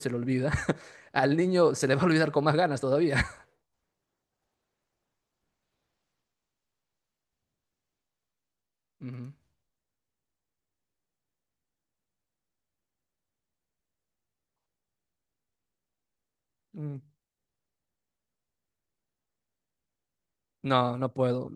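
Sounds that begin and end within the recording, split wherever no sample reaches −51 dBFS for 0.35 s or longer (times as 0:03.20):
0:09.01–0:09.32
0:16.74–0:17.00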